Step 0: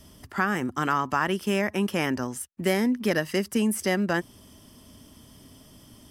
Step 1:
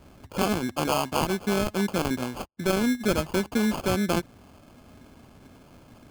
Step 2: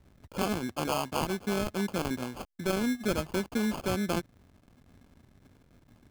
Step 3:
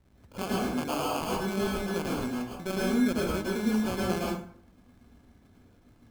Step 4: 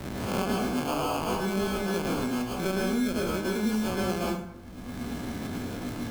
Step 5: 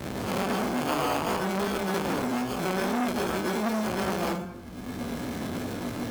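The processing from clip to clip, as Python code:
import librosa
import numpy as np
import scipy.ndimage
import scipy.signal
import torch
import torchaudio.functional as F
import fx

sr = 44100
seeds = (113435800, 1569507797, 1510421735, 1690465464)

y1 = fx.sample_hold(x, sr, seeds[0], rate_hz=1900.0, jitter_pct=0)
y2 = fx.backlash(y1, sr, play_db=-46.5)
y2 = y2 * 10.0 ** (-5.0 / 20.0)
y3 = fx.rev_plate(y2, sr, seeds[1], rt60_s=0.57, hf_ratio=0.65, predelay_ms=95, drr_db=-3.5)
y3 = y3 * 10.0 ** (-4.5 / 20.0)
y4 = fx.spec_swells(y3, sr, rise_s=0.33)
y4 = fx.band_squash(y4, sr, depth_pct=100)
y5 = fx.vibrato(y4, sr, rate_hz=2.5, depth_cents=34.0)
y5 = fx.highpass(y5, sr, hz=80.0, slope=6)
y5 = fx.transformer_sat(y5, sr, knee_hz=1300.0)
y5 = y5 * 10.0 ** (4.5 / 20.0)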